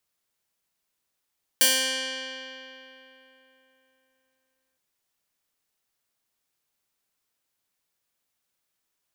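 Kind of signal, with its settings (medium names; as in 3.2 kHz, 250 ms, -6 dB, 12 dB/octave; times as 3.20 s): plucked string C4, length 3.16 s, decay 3.55 s, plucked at 0.2, bright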